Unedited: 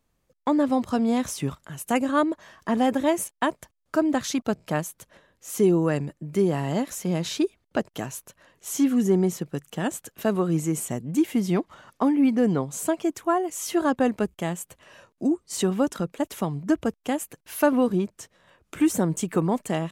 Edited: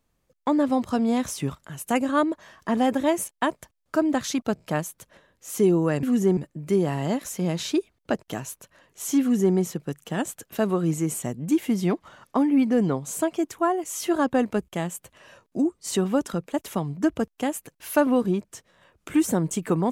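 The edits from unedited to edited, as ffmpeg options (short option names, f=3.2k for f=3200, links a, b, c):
-filter_complex "[0:a]asplit=3[a][b][c];[a]atrim=end=6.032[d];[b]atrim=start=8.868:end=9.212[e];[c]atrim=start=6.028[f];[d][e]acrossfade=d=0.004:c1=hsin:c2=hsin[g];[g][f]acrossfade=d=0.004:c1=hsin:c2=hsin"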